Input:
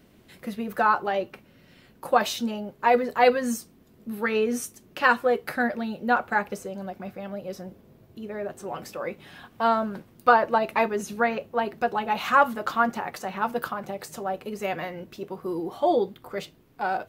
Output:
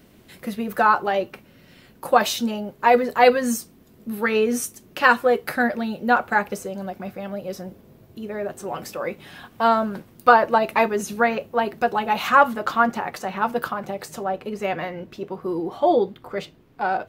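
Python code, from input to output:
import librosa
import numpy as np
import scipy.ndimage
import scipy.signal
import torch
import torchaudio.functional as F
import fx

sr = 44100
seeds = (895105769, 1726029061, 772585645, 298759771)

y = fx.high_shelf(x, sr, hz=6600.0, db=fx.steps((0.0, 3.5), (12.27, -3.0), (14.24, -10.0)))
y = y * librosa.db_to_amplitude(4.0)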